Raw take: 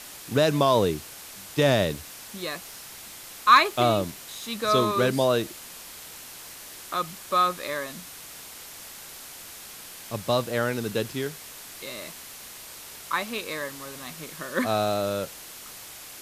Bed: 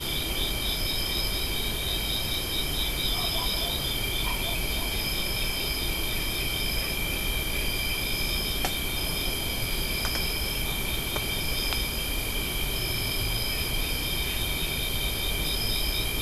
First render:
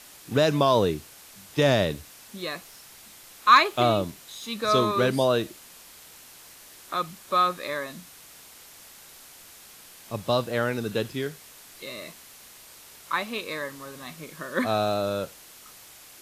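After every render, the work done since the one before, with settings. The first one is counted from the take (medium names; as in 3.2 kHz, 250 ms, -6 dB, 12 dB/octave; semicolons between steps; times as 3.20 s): noise print and reduce 6 dB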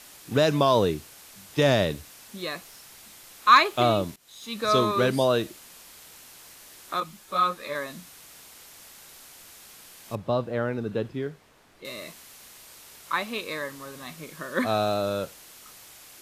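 4.16–4.60 s: fade in, from -19 dB; 7.00–7.75 s: three-phase chorus; 10.15–11.85 s: low-pass 1 kHz 6 dB/octave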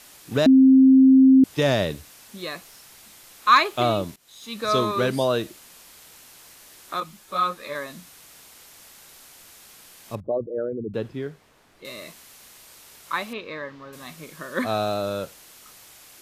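0.46–1.44 s: bleep 264 Hz -9.5 dBFS; 10.20–10.94 s: resonances exaggerated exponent 3; 13.33–13.93 s: distance through air 230 m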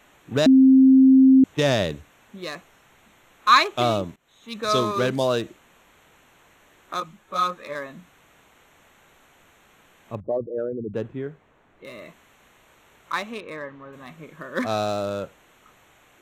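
local Wiener filter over 9 samples; dynamic bell 5.9 kHz, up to +6 dB, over -48 dBFS, Q 1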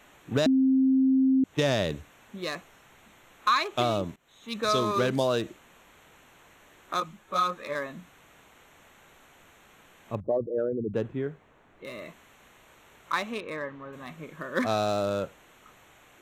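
compression 6:1, threshold -21 dBFS, peak gain reduction 10.5 dB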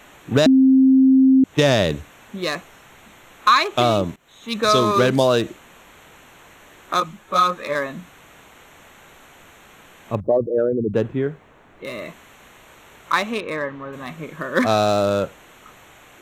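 trim +9 dB; peak limiter -3 dBFS, peak gain reduction 1.5 dB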